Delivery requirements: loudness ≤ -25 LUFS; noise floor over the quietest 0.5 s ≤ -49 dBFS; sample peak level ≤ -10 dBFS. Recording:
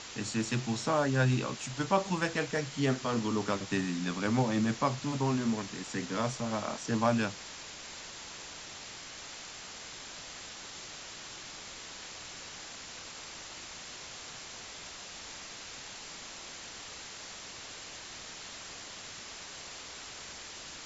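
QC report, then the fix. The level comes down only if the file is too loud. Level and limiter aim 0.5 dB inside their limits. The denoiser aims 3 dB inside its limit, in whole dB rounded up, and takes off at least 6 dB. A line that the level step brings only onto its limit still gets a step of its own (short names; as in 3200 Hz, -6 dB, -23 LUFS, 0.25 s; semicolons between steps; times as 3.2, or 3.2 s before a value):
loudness -35.5 LUFS: OK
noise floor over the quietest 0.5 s -46 dBFS: fail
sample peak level -12.5 dBFS: OK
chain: denoiser 6 dB, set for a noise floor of -46 dBFS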